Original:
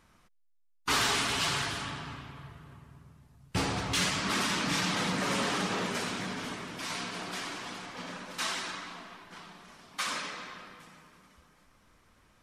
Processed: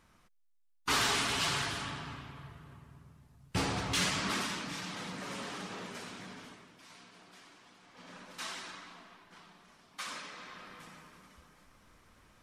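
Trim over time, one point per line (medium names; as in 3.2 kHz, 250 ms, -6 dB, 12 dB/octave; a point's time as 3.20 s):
4.24 s -2 dB
4.74 s -11 dB
6.36 s -11 dB
6.82 s -19 dB
7.78 s -19 dB
8.18 s -8 dB
10.28 s -8 dB
10.85 s +1.5 dB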